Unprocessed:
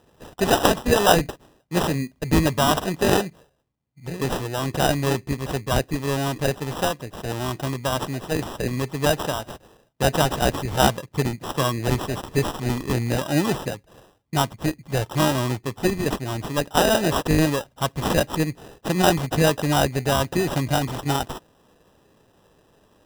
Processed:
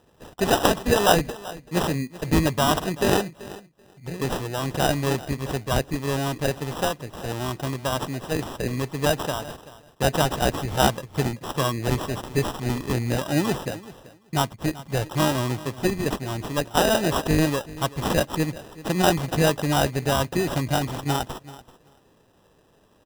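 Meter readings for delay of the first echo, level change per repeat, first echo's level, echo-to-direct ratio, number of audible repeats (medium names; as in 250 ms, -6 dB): 384 ms, -16.5 dB, -18.0 dB, -18.0 dB, 2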